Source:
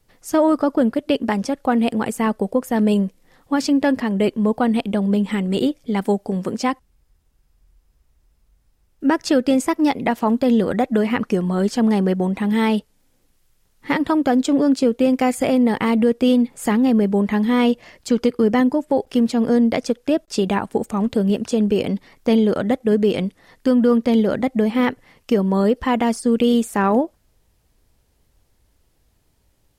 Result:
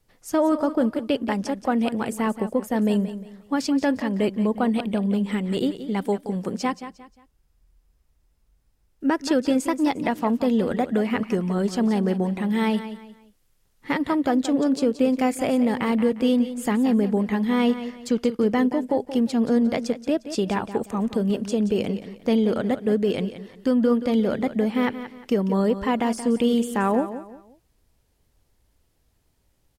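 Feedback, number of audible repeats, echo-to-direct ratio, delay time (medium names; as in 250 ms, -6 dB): 32%, 3, -11.5 dB, 177 ms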